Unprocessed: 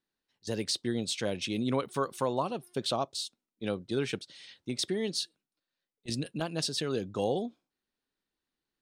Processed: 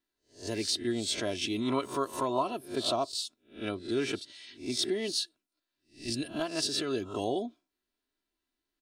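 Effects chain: spectral swells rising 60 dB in 0.33 s; comb 3 ms, depth 69%; gain -2 dB

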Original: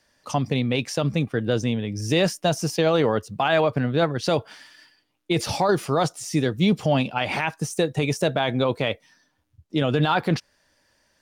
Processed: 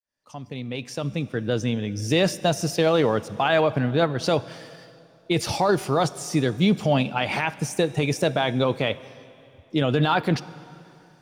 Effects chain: opening faded in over 1.85 s; plate-style reverb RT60 2.8 s, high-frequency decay 0.9×, DRR 16.5 dB

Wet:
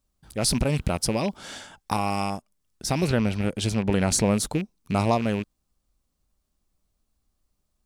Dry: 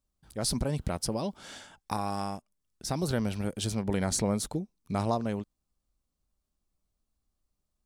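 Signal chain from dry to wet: rattling part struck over -33 dBFS, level -32 dBFS; 3.04–4.1 LPF 3700 Hz -> 6900 Hz 6 dB/oct; gain +6.5 dB

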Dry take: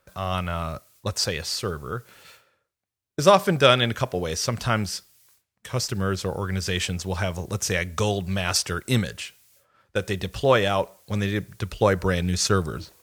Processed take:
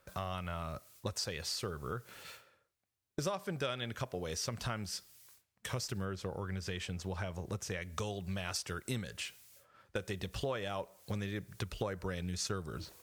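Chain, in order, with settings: compressor 6:1, threshold -34 dBFS, peak gain reduction 22 dB; 6.05–7.82 high shelf 4000 Hz -7 dB; gain -1.5 dB

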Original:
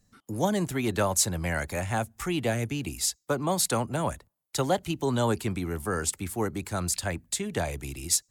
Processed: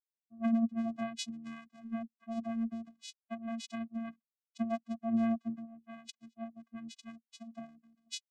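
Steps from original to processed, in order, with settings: per-bin expansion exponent 2; vocoder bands 4, square 228 Hz; three-band expander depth 70%; gain -4.5 dB

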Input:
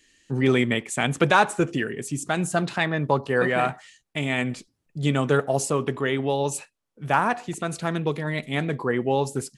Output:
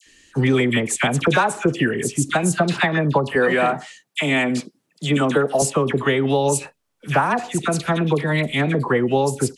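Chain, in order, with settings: 3.29–5.56 HPF 160 Hz 24 dB/oct; compressor 6:1, threshold -22 dBFS, peak gain reduction 9.5 dB; dispersion lows, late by 65 ms, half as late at 1400 Hz; gain +8.5 dB

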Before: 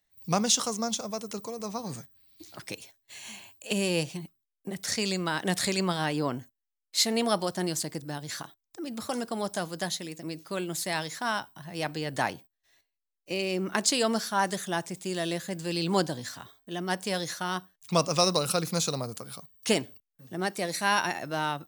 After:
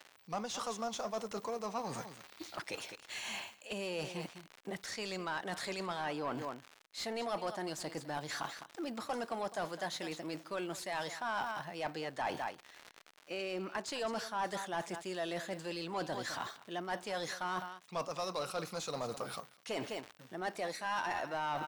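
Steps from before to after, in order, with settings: echo 0.207 s -18.5 dB; crackle 120/s -39 dBFS; reverse; compressor 5:1, threshold -42 dBFS, peak gain reduction 21.5 dB; reverse; dynamic EQ 820 Hz, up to +4 dB, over -54 dBFS, Q 0.91; overdrive pedal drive 18 dB, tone 2300 Hz, clips at -24.5 dBFS; gain -1 dB

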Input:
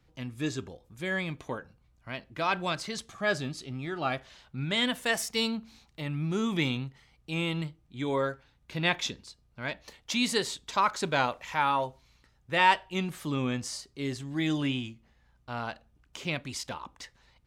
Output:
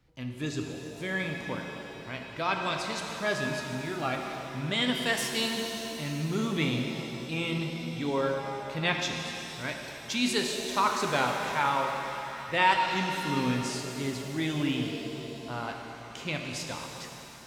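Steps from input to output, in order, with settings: shimmer reverb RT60 3.3 s, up +7 st, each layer -8 dB, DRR 2 dB; gain -1.5 dB

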